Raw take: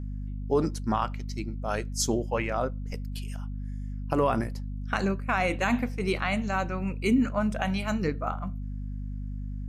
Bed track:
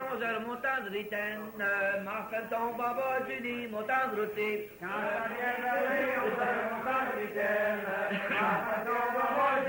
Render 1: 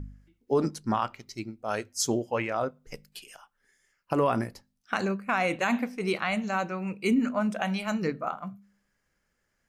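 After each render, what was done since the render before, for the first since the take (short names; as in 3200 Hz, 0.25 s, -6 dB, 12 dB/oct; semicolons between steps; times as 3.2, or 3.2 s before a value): de-hum 50 Hz, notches 5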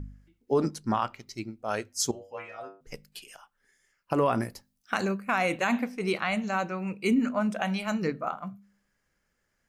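2.11–2.81 metallic resonator 94 Hz, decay 0.45 s, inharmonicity 0.002; 4.4–5.6 high shelf 6500 Hz -> 11000 Hz +9 dB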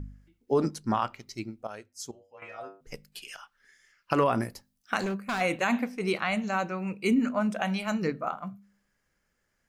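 1.67–2.42 gain -12 dB; 3.23–4.24 band shelf 2700 Hz +8 dB 2.6 oct; 4.99–5.41 overloaded stage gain 26.5 dB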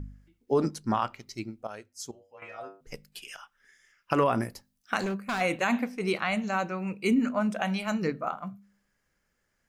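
3.18–4.5 notch 4300 Hz, Q 6.1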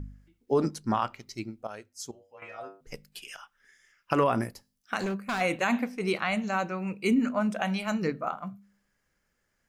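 4.51–5.01 resonator 110 Hz, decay 0.4 s, mix 30%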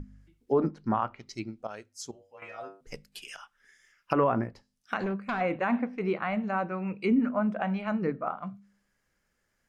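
treble ducked by the level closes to 1600 Hz, closed at -26.5 dBFS; notches 50/100/150 Hz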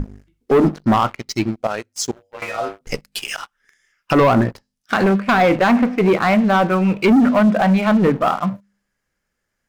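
in parallel at +0.5 dB: limiter -20.5 dBFS, peak gain reduction 11 dB; on the sum: sample leveller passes 3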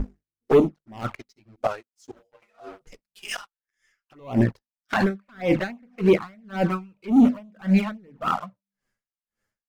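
envelope flanger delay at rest 9.5 ms, full sweep at -10 dBFS; dB-linear tremolo 1.8 Hz, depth 36 dB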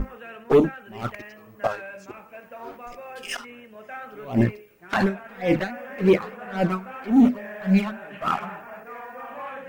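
add bed track -8 dB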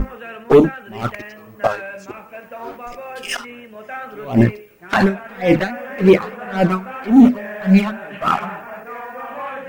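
gain +7 dB; limiter -2 dBFS, peak gain reduction 1 dB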